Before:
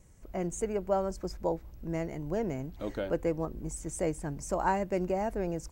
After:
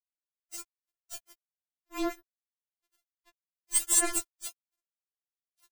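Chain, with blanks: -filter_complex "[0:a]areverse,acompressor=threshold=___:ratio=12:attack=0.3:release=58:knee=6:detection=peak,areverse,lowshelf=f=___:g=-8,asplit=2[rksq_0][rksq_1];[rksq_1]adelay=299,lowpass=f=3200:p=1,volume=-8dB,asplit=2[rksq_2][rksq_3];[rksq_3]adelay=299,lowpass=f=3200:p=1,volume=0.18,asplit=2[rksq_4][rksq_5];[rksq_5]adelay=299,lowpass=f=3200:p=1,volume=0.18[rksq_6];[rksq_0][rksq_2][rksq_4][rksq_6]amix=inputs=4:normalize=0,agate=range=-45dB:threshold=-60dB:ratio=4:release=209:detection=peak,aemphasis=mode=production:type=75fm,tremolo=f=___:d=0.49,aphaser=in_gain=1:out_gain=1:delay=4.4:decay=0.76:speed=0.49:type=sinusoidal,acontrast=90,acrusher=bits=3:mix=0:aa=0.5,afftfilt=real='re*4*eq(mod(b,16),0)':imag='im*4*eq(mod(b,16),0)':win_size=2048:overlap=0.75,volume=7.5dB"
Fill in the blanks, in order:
-42dB, 160, 0.99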